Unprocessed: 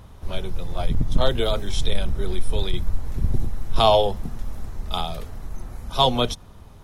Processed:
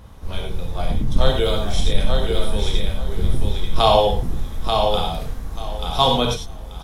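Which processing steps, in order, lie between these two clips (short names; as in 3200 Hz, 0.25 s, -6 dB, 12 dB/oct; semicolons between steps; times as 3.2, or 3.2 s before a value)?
feedback echo 0.886 s, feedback 20%, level -4.5 dB; non-linear reverb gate 0.13 s flat, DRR 0.5 dB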